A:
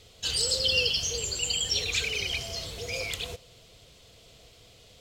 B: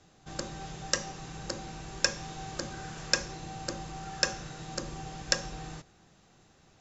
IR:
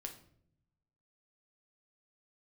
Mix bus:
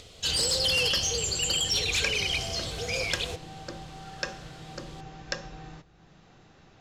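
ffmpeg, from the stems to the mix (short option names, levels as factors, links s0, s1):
-filter_complex "[0:a]volume=17.8,asoftclip=hard,volume=0.0562,volume=1.41[s0];[1:a]lowpass=4300,volume=0.562,asplit=2[s1][s2];[s2]volume=0.562[s3];[2:a]atrim=start_sample=2205[s4];[s3][s4]afir=irnorm=-1:irlink=0[s5];[s0][s1][s5]amix=inputs=3:normalize=0,lowpass=11000,acompressor=mode=upward:threshold=0.00501:ratio=2.5"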